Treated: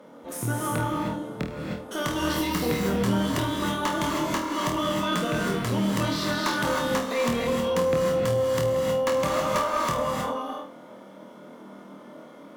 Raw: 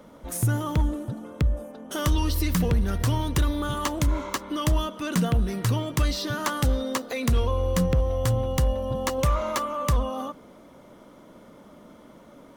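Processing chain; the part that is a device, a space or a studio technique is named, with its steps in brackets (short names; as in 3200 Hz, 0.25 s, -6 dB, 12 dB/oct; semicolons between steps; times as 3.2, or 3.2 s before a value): HPF 220 Hz 12 dB/oct; flutter echo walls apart 4.3 m, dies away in 0.35 s; non-linear reverb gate 0.34 s rising, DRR -0.5 dB; tube preamp driven hard (tube stage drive 13 dB, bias 0.4; high shelf 3900 Hz -7 dB); gain +1.5 dB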